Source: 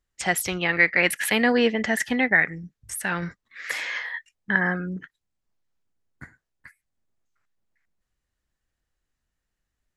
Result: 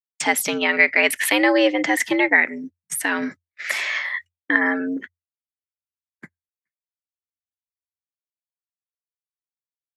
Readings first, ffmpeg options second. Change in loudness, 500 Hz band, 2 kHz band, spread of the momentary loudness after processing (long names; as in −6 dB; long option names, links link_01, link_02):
+3.5 dB, +4.0 dB, +3.5 dB, 13 LU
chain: -filter_complex "[0:a]agate=range=-49dB:threshold=-39dB:ratio=16:detection=peak,asplit=2[link_01][link_02];[link_02]acompressor=threshold=-28dB:ratio=6,volume=-2.5dB[link_03];[link_01][link_03]amix=inputs=2:normalize=0,afreqshift=86,volume=1.5dB"